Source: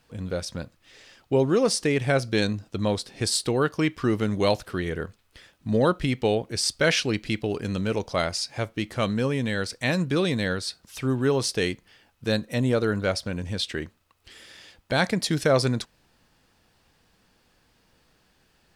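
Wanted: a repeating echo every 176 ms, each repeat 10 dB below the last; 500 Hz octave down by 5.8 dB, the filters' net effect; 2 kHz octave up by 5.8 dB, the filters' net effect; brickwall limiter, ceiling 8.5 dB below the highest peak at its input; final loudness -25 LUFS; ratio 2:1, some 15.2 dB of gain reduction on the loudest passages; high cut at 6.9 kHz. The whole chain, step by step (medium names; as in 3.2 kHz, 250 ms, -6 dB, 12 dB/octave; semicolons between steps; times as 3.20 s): low-pass 6.9 kHz; peaking EQ 500 Hz -7.5 dB; peaking EQ 2 kHz +8 dB; compression 2:1, threshold -45 dBFS; peak limiter -29.5 dBFS; feedback delay 176 ms, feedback 32%, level -10 dB; trim +15.5 dB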